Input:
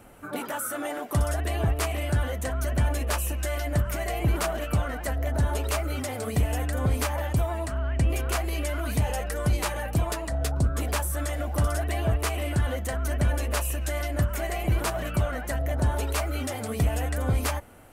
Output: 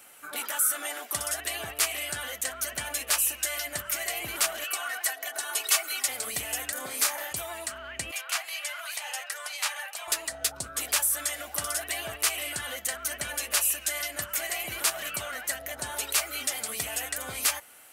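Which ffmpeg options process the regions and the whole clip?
ffmpeg -i in.wav -filter_complex "[0:a]asettb=1/sr,asplit=3[link_01][link_02][link_03];[link_01]atrim=end=4.644[link_04];[link_02]atrim=start=4.64:end=6.08,asetpts=PTS-STARTPTS,afade=type=in:duration=0.004:curve=qsin,afade=type=out:start_time=1.436:duration=0.004:curve=qsin,highpass=570,aecho=1:1:2.7:0.89,atrim=end_sample=63504[link_05];[link_03]atrim=start=6.076[link_06];[link_04][link_05]acrossfade=duration=0.004:curve1=hsin:curve2=qsin[link_07];[link_07][link_06]acrossfade=duration=0.004:curve1=qsin:curve2=hsin,asettb=1/sr,asplit=3[link_08][link_09][link_10];[link_08]atrim=end=6.724[link_11];[link_09]atrim=start=6.72:end=7.32,asetpts=PTS-STARTPTS,afade=type=in:duration=0.004:curve=qsin,afade=type=out:start_time=0.596:duration=0.004:curve=qsin,highpass=210,equalizer=frequency=2900:width_type=o:width=0.52:gain=-4.5,asplit=2[link_12][link_13];[link_13]adelay=31,volume=-7dB[link_14];[link_12][link_14]amix=inputs=2:normalize=0,atrim=end_sample=26460[link_15];[link_10]atrim=start=7.316[link_16];[link_11][link_15]acrossfade=duration=0.004:curve1=hsin:curve2=qsin[link_17];[link_17][link_16]acrossfade=duration=0.004:curve1=qsin:curve2=hsin,asettb=1/sr,asplit=3[link_18][link_19][link_20];[link_18]atrim=end=8.114[link_21];[link_19]atrim=start=8.11:end=10.08,asetpts=PTS-STARTPTS,afade=type=in:duration=0.004:curve=qsin,afade=type=out:start_time=1.966:duration=0.004:curve=qsin,highpass=frequency=680:width=0.5412,highpass=frequency=680:width=1.3066,highshelf=frequency=7100:gain=-10.5[link_22];[link_20]atrim=start=10.076[link_23];[link_21][link_22]acrossfade=duration=0.004:curve1=hsin:curve2=qsin[link_24];[link_24][link_23]acrossfade=duration=0.004:curve1=qsin:curve2=hsin,highpass=frequency=510:poles=1,tiltshelf=frequency=1400:gain=-9.5,bandreject=frequency=1000:width=23" out.wav

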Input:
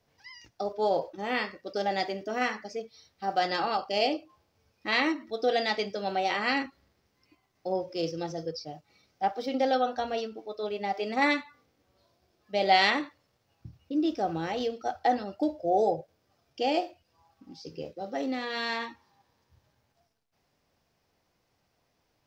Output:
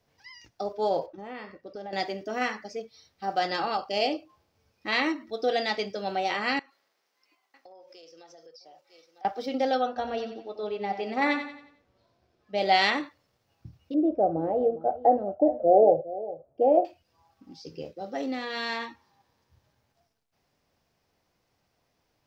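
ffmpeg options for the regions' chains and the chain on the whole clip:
ffmpeg -i in.wav -filter_complex "[0:a]asettb=1/sr,asplit=3[link_01][link_02][link_03];[link_01]atrim=end=1.064[link_04];[link_02]atrim=start=1.06:end=1.93,asetpts=PTS-STARTPTS,afade=type=in:duration=0.004:curve=qsin,afade=type=out:start_time=0.866:duration=0.004:curve=qsin,highshelf=frequency=2200:gain=-12,acompressor=threshold=-39dB:ratio=2.5:attack=3.2:release=140:knee=1:detection=peak[link_05];[link_03]atrim=start=1.926[link_06];[link_04][link_05]acrossfade=duration=0.004:curve1=hsin:curve2=qsin[link_07];[link_07][link_06]acrossfade=duration=0.004:curve1=qsin:curve2=hsin,asettb=1/sr,asplit=3[link_08][link_09][link_10];[link_08]atrim=end=6.594[link_11];[link_09]atrim=start=6.59:end=9.25,asetpts=PTS-STARTPTS,afade=type=in:duration=0.004:curve=qsin,afade=type=out:start_time=2.656:duration=0.004:curve=qsin,highpass=590,aecho=1:1:949:0.0794,atrim=end_sample=117306,acompressor=threshold=-48dB:ratio=8:attack=3.2:release=140:knee=1:detection=peak[link_12];[link_10]atrim=start=9.246[link_13];[link_11][link_12]acrossfade=duration=0.004:curve1=hsin:curve2=qsin[link_14];[link_14][link_13]acrossfade=duration=0.004:curve1=qsin:curve2=hsin,asettb=1/sr,asplit=3[link_15][link_16][link_17];[link_15]atrim=end=9.874[link_18];[link_16]atrim=start=9.87:end=12.58,asetpts=PTS-STARTPTS,afade=type=in:duration=0.004:curve=qsin,afade=type=out:start_time=2.706:duration=0.004:curve=qsin,aemphasis=mode=reproduction:type=50kf,aecho=1:1:90|180|270|360|450:0.335|0.141|0.0591|0.0248|0.0104,atrim=end_sample=119511[link_19];[link_17]atrim=start=12.576[link_20];[link_18][link_19]acrossfade=duration=0.004:curve1=hsin:curve2=qsin[link_21];[link_21][link_20]acrossfade=duration=0.004:curve1=qsin:curve2=hsin,asettb=1/sr,asplit=3[link_22][link_23][link_24];[link_22]atrim=end=13.944[link_25];[link_23]atrim=start=13.94:end=16.85,asetpts=PTS-STARTPTS,afade=type=in:duration=0.004:curve=qsin,afade=type=out:start_time=2.906:duration=0.004:curve=qsin,lowpass=frequency=600:width_type=q:width=3.5,aecho=1:1:407:0.15,atrim=end_sample=128331[link_26];[link_24]atrim=start=16.846[link_27];[link_25][link_26]acrossfade=duration=0.004:curve1=hsin:curve2=qsin[link_28];[link_28][link_27]acrossfade=duration=0.004:curve1=qsin:curve2=hsin" out.wav

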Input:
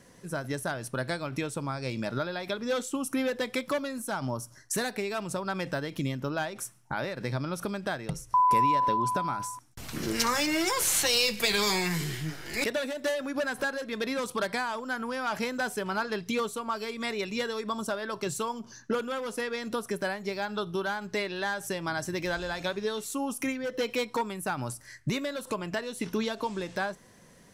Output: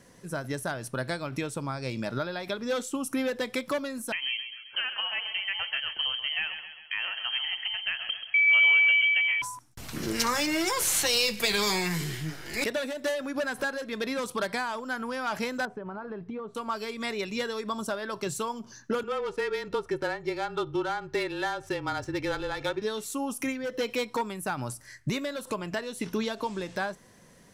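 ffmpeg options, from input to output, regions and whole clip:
ffmpeg -i in.wav -filter_complex "[0:a]asettb=1/sr,asplit=3[link_01][link_02][link_03];[link_01]atrim=end=4.124[link_04];[link_02]atrim=start=4.12:end=9.42,asetpts=PTS-STARTPTS,afade=type=in:duration=0.004:curve=qsin,afade=type=out:start_time=5.296:duration=0.004:curve=qsin,agate=range=-33dB:threshold=-50dB:ratio=3:release=100:detection=peak,aecho=1:1:133|266|399|532|665|798:0.316|0.171|0.0922|0.0498|0.0269|0.0145,atrim=end_sample=233730,lowpass=frequency=2800:width_type=q:width=0.5098,lowpass=frequency=2800:width_type=q:width=0.6013,lowpass=frequency=2800:width_type=q:width=0.9,lowpass=frequency=2800:width_type=q:width=2.563,afreqshift=-3300[link_05];[link_03]atrim=start=9.416[link_06];[link_04][link_05]acrossfade=duration=0.004:curve1=hsin:curve2=qsin[link_07];[link_07][link_06]acrossfade=duration=0.004:curve1=qsin:curve2=hsin,asettb=1/sr,asplit=3[link_08][link_09][link_10];[link_08]atrim=end=15.654[link_11];[link_09]atrim=start=15.65:end=16.55,asetpts=PTS-STARTPTS,afade=type=in:duration=0.004:curve=qsin,afade=type=out:start_time=0.896:duration=0.004:curve=qsin,lowpass=1100,acompressor=threshold=-33dB:ratio=6:attack=3.2:release=140:knee=1:detection=peak[link_12];[link_10]atrim=start=16.546[link_13];[link_11][link_12]acrossfade=duration=0.004:curve1=hsin:curve2=qsin[link_14];[link_14][link_13]acrossfade=duration=0.004:curve1=qsin:curve2=hsin,asettb=1/sr,asplit=3[link_15][link_16][link_17];[link_15]atrim=end=19.034[link_18];[link_16]atrim=start=19.03:end=22.82,asetpts=PTS-STARTPTS,afade=type=in:duration=0.004:curve=qsin,afade=type=out:start_time=3.786:duration=0.004:curve=qsin,aecho=1:1:2.2:0.6,atrim=end_sample=167139,adynamicsmooth=sensitivity=5.5:basefreq=2800,afreqshift=-26[link_19];[link_17]atrim=start=22.816[link_20];[link_18][link_19]acrossfade=duration=0.004:curve1=hsin:curve2=qsin[link_21];[link_21][link_20]acrossfade=duration=0.004:curve1=qsin:curve2=hsin" out.wav

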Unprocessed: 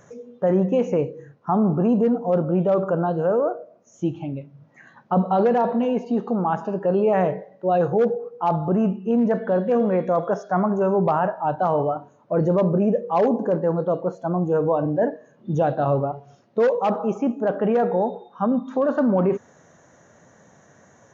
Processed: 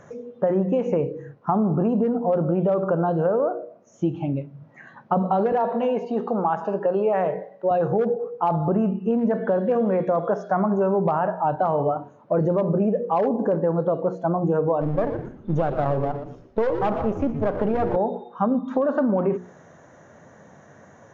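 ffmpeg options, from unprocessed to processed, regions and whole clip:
ffmpeg -i in.wav -filter_complex "[0:a]asettb=1/sr,asplit=3[link_01][link_02][link_03];[link_01]atrim=end=5.524[link_04];[link_02]atrim=start=5.52:end=7.71,asetpts=PTS-STARTPTS,afade=type=in:duration=0.004:curve=qsin,afade=type=out:start_time=2.186:duration=0.004:curve=qsin,highpass=210,equalizer=frequency=270:width_type=o:width=0.75:gain=-7[link_05];[link_03]atrim=start=7.706[link_06];[link_04][link_05]acrossfade=duration=0.004:curve1=hsin:curve2=qsin[link_07];[link_07][link_06]acrossfade=duration=0.004:curve1=qsin:curve2=hsin,asettb=1/sr,asplit=3[link_08][link_09][link_10];[link_08]atrim=end=14.814[link_11];[link_09]atrim=start=14.81:end=17.96,asetpts=PTS-STARTPTS,afade=type=in:duration=0.004:curve=qsin,afade=type=out:start_time=3.146:duration=0.004:curve=qsin,aeval=exprs='if(lt(val(0),0),0.447*val(0),val(0))':channel_layout=same,asplit=5[link_12][link_13][link_14][link_15][link_16];[link_13]adelay=118,afreqshift=-130,volume=-11dB[link_17];[link_14]adelay=236,afreqshift=-260,volume=-20.6dB[link_18];[link_15]adelay=354,afreqshift=-390,volume=-30.3dB[link_19];[link_16]adelay=472,afreqshift=-520,volume=-39.9dB[link_20];[link_12][link_17][link_18][link_19][link_20]amix=inputs=5:normalize=0,atrim=end_sample=138915[link_21];[link_10]atrim=start=17.956[link_22];[link_11][link_21]acrossfade=duration=0.004:curve1=hsin:curve2=qsin[link_23];[link_23][link_22]acrossfade=duration=0.004:curve1=qsin:curve2=hsin,lowpass=frequency=2300:poles=1,bandreject=frequency=60:width_type=h:width=6,bandreject=frequency=120:width_type=h:width=6,bandreject=frequency=180:width_type=h:width=6,bandreject=frequency=240:width_type=h:width=6,bandreject=frequency=300:width_type=h:width=6,bandreject=frequency=360:width_type=h:width=6,bandreject=frequency=420:width_type=h:width=6,bandreject=frequency=480:width_type=h:width=6,acompressor=threshold=-23dB:ratio=6,volume=5dB" out.wav

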